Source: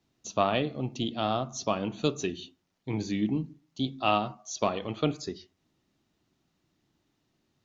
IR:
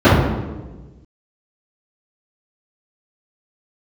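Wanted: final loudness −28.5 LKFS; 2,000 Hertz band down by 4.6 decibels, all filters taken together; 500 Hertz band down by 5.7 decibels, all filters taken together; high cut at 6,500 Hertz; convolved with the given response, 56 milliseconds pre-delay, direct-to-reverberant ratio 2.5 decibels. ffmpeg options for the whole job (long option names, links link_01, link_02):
-filter_complex "[0:a]lowpass=6500,equalizer=frequency=500:width_type=o:gain=-7.5,equalizer=frequency=2000:width_type=o:gain=-6.5,asplit=2[link_01][link_02];[1:a]atrim=start_sample=2205,adelay=56[link_03];[link_02][link_03]afir=irnorm=-1:irlink=0,volume=-32.5dB[link_04];[link_01][link_04]amix=inputs=2:normalize=0,volume=-2dB"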